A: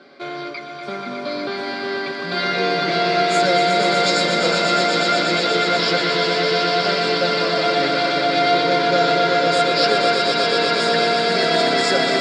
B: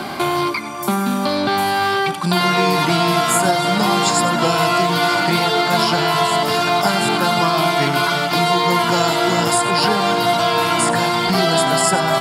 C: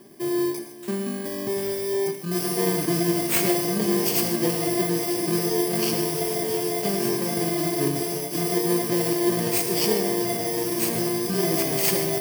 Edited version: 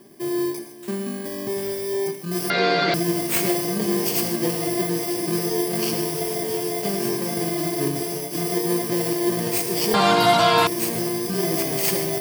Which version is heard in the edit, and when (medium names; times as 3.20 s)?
C
2.50–2.94 s: from A
9.94–10.67 s: from B